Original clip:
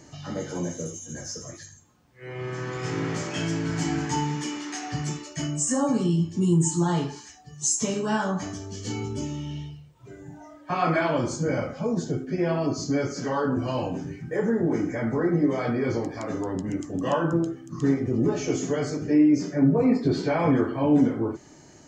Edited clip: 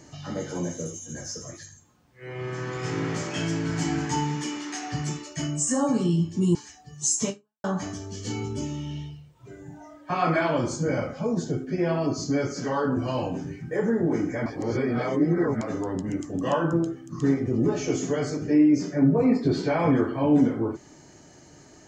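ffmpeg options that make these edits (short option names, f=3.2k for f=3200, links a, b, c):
-filter_complex "[0:a]asplit=5[a][b][c][d][e];[a]atrim=end=6.552[f];[b]atrim=start=7.148:end=8.24,asetpts=PTS-STARTPTS,afade=t=out:st=0.742:d=0.35:c=exp[g];[c]atrim=start=8.24:end=15.062,asetpts=PTS-STARTPTS,afade=t=in:d=0.004:c=hsin[h];[d]atrim=start=15.058:end=16.212,asetpts=PTS-STARTPTS,areverse[i];[e]atrim=start=16.208[j];[g][h]concat=n=2:v=0:a=1[k];[f][k]acrossfade=d=0.004:c1=hsin:c2=hsin[l];[l][i]acrossfade=d=0.004:c1=hsin:c2=hsin[m];[m][j]acrossfade=d=0.004:c1=hsin:c2=hsin"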